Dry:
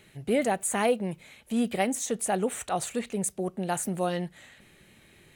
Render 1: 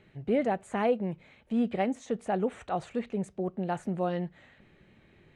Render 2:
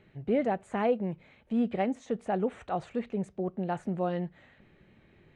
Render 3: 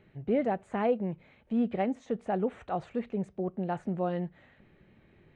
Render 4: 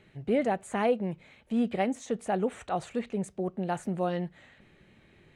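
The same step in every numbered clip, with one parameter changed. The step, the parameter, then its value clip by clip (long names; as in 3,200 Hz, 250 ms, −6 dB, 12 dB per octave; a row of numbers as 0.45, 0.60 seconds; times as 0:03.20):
head-to-tape spacing loss, at 10 kHz: 29, 37, 46, 21 decibels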